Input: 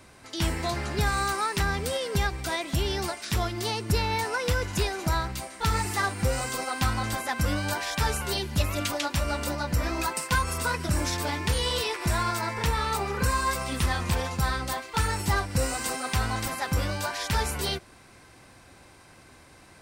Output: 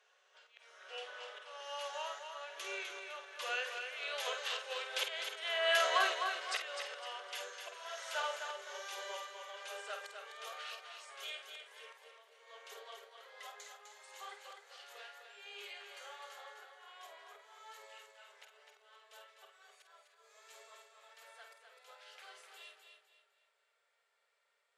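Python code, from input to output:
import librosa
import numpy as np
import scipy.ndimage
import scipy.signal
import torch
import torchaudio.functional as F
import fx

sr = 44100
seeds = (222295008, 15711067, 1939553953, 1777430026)

y = fx.speed_glide(x, sr, from_pct=69, to_pct=91)
y = fx.doppler_pass(y, sr, speed_mps=7, closest_m=5.5, pass_at_s=5.6)
y = fx.peak_eq(y, sr, hz=2900.0, db=7.5, octaves=0.86)
y = fx.hum_notches(y, sr, base_hz=60, count=9)
y = fx.auto_swell(y, sr, attack_ms=418.0)
y = scipy.signal.sosfilt(scipy.signal.cheby1(6, 6, 400.0, 'highpass', fs=sr, output='sos'), y)
y = fx.doubler(y, sr, ms=49.0, db=-7.5)
y = fx.echo_feedback(y, sr, ms=254, feedback_pct=34, wet_db=-6.5)
y = y * librosa.db_to_amplitude(1.5)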